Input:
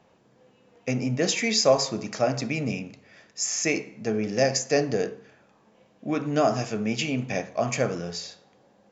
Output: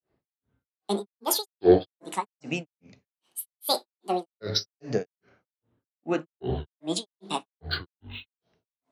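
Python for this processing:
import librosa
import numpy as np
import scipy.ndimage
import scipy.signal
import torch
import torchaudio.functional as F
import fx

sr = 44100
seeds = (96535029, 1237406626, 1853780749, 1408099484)

y = fx.granulator(x, sr, seeds[0], grain_ms=262.0, per_s=2.5, spray_ms=11.0, spread_st=12)
y = fx.band_widen(y, sr, depth_pct=40)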